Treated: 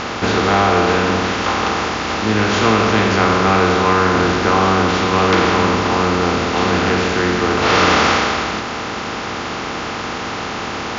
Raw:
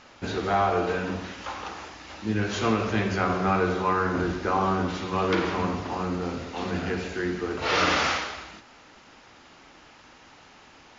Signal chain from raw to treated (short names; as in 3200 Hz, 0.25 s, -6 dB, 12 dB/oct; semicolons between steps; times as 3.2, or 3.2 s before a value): per-bin compression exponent 0.4; notch 720 Hz, Q 18; gain +5.5 dB